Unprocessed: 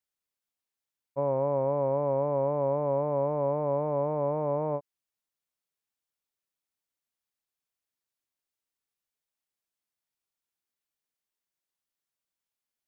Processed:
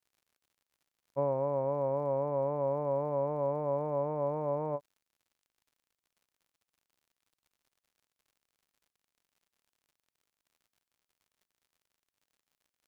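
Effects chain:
reverb reduction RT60 0.82 s
surface crackle 85 per second −57 dBFS
level −1.5 dB

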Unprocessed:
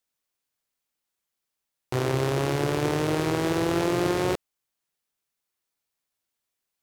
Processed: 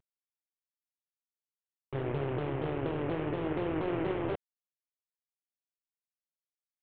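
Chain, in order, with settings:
variable-slope delta modulation 16 kbit/s
pitch modulation by a square or saw wave saw down 4.2 Hz, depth 160 cents
level −5.5 dB

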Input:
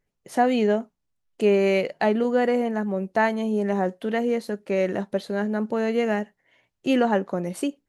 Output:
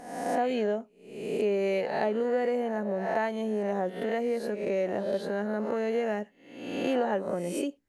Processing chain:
peak hold with a rise ahead of every peak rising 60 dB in 0.75 s
dynamic equaliser 530 Hz, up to +5 dB, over −33 dBFS, Q 1.3
downward compressor 2 to 1, threshold −34 dBFS, peak gain reduction 12.5 dB

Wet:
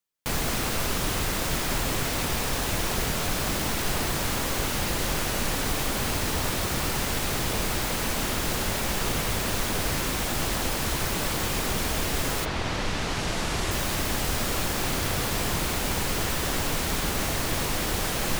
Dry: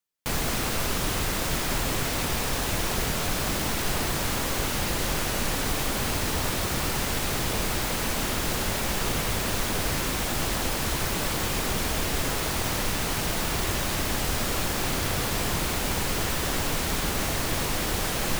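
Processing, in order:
0:12.44–0:13.70: low-pass filter 3,800 Hz → 9,600 Hz 12 dB per octave

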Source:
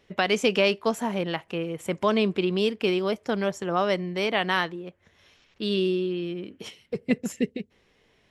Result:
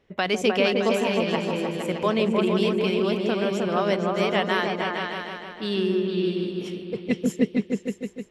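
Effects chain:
on a send: echo whose low-pass opens from repeat to repeat 154 ms, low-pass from 400 Hz, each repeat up 2 octaves, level 0 dB
on the sum: one half of a high-frequency compander decoder only
level −1 dB

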